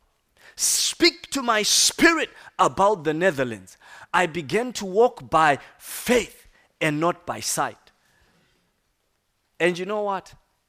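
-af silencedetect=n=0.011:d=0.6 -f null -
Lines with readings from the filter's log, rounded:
silence_start: 7.87
silence_end: 9.60 | silence_duration: 1.73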